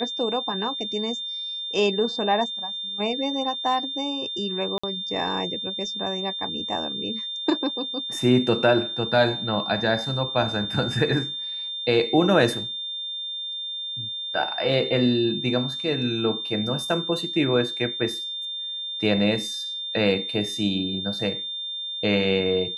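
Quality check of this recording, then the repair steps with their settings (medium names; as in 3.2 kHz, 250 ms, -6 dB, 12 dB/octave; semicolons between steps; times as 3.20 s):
whine 3.6 kHz -29 dBFS
4.78–4.83 s: dropout 55 ms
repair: band-stop 3.6 kHz, Q 30; interpolate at 4.78 s, 55 ms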